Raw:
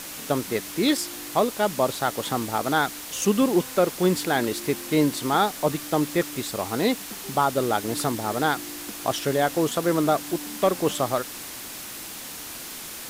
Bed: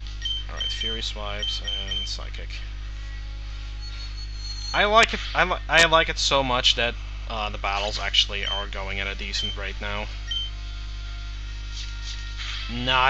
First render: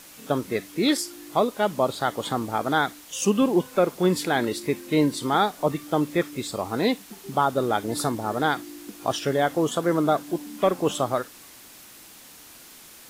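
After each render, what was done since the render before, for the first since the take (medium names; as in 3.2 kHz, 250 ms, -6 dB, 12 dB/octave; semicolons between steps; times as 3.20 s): noise print and reduce 10 dB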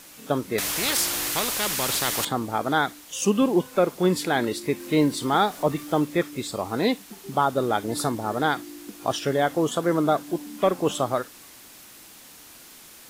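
0.58–2.25 s: spectrum-flattening compressor 4:1; 4.80–6.05 s: companding laws mixed up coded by mu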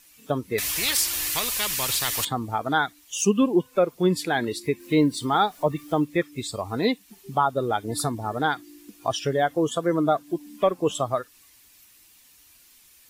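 expander on every frequency bin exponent 1.5; in parallel at +1 dB: compression, threshold -32 dBFS, peak gain reduction 15 dB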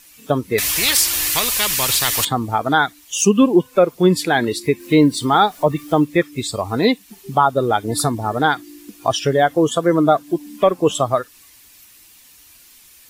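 trim +7.5 dB; peak limiter -3 dBFS, peak gain reduction 2 dB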